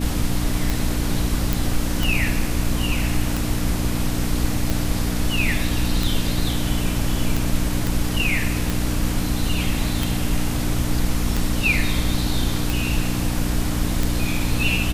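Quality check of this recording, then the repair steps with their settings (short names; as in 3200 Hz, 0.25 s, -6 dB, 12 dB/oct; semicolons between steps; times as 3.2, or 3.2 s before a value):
hum 60 Hz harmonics 5 -25 dBFS
tick 45 rpm
1.53 pop
7.87 pop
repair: de-click; de-hum 60 Hz, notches 5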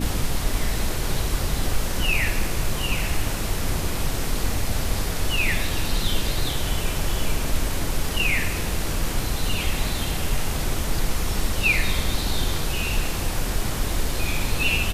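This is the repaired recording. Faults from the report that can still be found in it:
none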